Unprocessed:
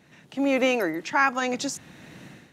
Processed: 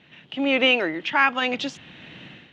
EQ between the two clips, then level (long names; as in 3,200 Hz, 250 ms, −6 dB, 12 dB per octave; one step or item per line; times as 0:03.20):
low-pass with resonance 3,100 Hz, resonance Q 4.5
0.0 dB